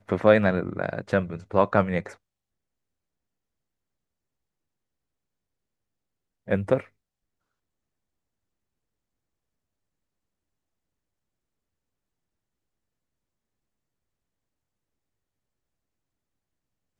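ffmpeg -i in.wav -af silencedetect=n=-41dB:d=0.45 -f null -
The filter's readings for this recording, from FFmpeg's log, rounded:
silence_start: 2.14
silence_end: 6.48 | silence_duration: 4.34
silence_start: 6.86
silence_end: 16.99 | silence_duration: 10.13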